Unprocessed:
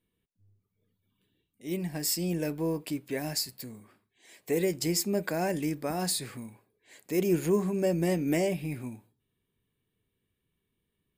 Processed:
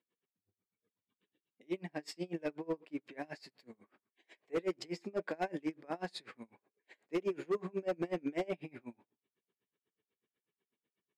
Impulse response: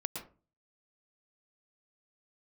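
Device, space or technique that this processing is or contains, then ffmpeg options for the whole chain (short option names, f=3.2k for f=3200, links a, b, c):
helicopter radio: -af "highpass=310,lowpass=2.8k,aeval=exprs='val(0)*pow(10,-30*(0.5-0.5*cos(2*PI*8.1*n/s))/20)':c=same,asoftclip=type=hard:threshold=-29.5dB,volume=1.5dB"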